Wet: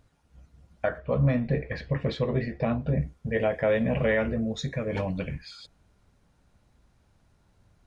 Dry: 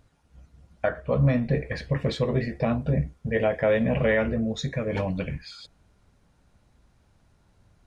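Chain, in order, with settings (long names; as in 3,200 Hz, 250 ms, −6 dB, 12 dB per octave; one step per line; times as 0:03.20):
0:00.98–0:03.01: low-pass filter 4,500 Hz 12 dB per octave
level −2 dB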